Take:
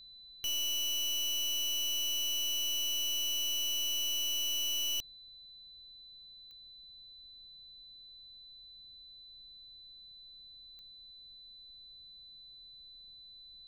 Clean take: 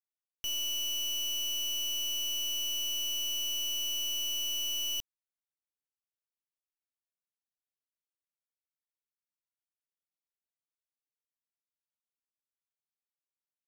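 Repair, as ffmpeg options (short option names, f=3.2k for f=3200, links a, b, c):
-filter_complex "[0:a]adeclick=t=4,bandreject=f=4k:w=30,asplit=3[a][b][c];[a]afade=t=out:st=13.15:d=0.02[d];[b]highpass=f=140:w=0.5412,highpass=f=140:w=1.3066,afade=t=in:st=13.15:d=0.02,afade=t=out:st=13.27:d=0.02[e];[c]afade=t=in:st=13.27:d=0.02[f];[d][e][f]amix=inputs=3:normalize=0,agate=range=-21dB:threshold=-46dB"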